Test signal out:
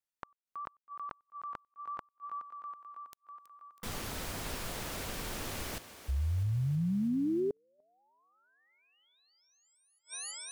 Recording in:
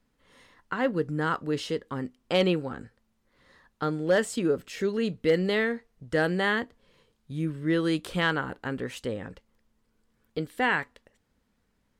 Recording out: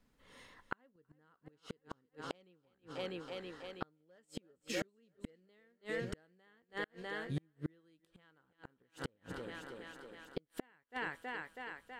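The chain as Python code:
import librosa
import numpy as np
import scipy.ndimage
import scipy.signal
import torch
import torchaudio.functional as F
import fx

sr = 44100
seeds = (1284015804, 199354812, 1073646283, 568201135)

y = fx.echo_thinned(x, sr, ms=324, feedback_pct=69, hz=160.0, wet_db=-13.5)
y = fx.vibrato(y, sr, rate_hz=8.4, depth_cents=16.0)
y = fx.gate_flip(y, sr, shuts_db=-24.0, range_db=-41)
y = F.gain(torch.from_numpy(y), -1.5).numpy()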